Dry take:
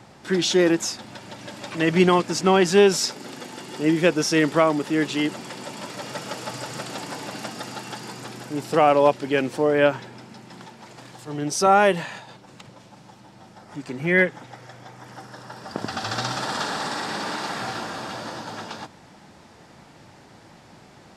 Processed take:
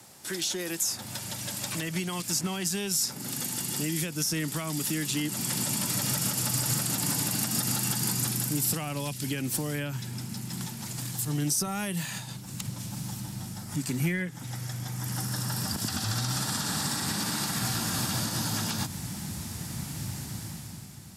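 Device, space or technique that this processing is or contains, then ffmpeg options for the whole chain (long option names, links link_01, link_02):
FM broadcast chain: -filter_complex "[0:a]highpass=78,dynaudnorm=framelen=120:gausssize=13:maxgain=11.5dB,acrossover=split=230|2000[link_01][link_02][link_03];[link_01]acompressor=threshold=-37dB:ratio=4[link_04];[link_02]acompressor=threshold=-25dB:ratio=4[link_05];[link_03]acompressor=threshold=-33dB:ratio=4[link_06];[link_04][link_05][link_06]amix=inputs=3:normalize=0,aemphasis=mode=production:type=50fm,alimiter=limit=-16.5dB:level=0:latency=1:release=93,asoftclip=type=hard:threshold=-17.5dB,lowpass=frequency=15000:width=0.5412,lowpass=frequency=15000:width=1.3066,aemphasis=mode=production:type=50fm,asubboost=boost=12:cutoff=140,volume=-7.5dB"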